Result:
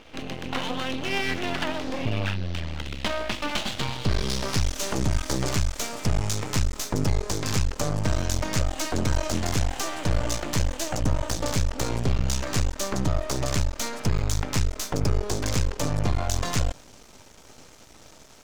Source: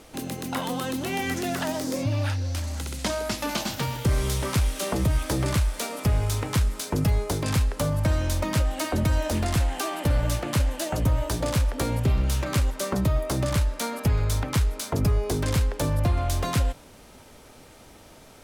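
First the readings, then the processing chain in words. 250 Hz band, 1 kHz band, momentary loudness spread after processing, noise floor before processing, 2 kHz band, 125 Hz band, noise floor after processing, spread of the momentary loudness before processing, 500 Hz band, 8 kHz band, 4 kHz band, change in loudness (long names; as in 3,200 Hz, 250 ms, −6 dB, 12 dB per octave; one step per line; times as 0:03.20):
−1.5 dB, −1.0 dB, 3 LU, −49 dBFS, +1.0 dB, −2.5 dB, −49 dBFS, 4 LU, −1.5 dB, +2.0 dB, +2.5 dB, −1.5 dB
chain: low-pass filter sweep 3,000 Hz → 6,600 Hz, 0:03.48–0:04.80
half-wave rectification
level +2.5 dB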